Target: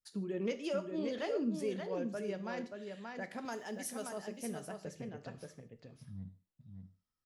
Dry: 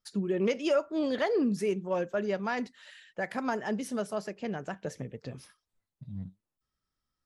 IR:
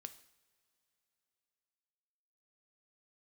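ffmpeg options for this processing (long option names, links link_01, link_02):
-filter_complex "[0:a]asettb=1/sr,asplit=3[link_01][link_02][link_03];[link_01]atrim=end=3.454[link_04];[link_02]atrim=start=3.45:end=4.09,asetpts=PTS-STARTPTS,afade=type=in:duration=0.004:curve=qsin,afade=type=out:start_time=0.636:duration=0.004:curve=qsin,aemphasis=mode=production:type=bsi[link_05];[link_03]atrim=start=4.086[link_06];[link_04][link_05]acrossfade=duration=0.004:curve1=hsin:curve2=qsin[link_07];[link_07][link_06]acrossfade=duration=0.004:curve1=qsin:curve2=hsin,aecho=1:1:579:0.531,adynamicequalizer=threshold=0.00631:dfrequency=1200:dqfactor=0.72:tfrequency=1200:tqfactor=0.72:attack=5:release=100:ratio=0.375:range=2.5:mode=cutabove:tftype=bell[link_08];[1:a]atrim=start_sample=2205,afade=type=out:start_time=0.21:duration=0.01,atrim=end_sample=9702[link_09];[link_08][link_09]afir=irnorm=-1:irlink=0,volume=-2dB"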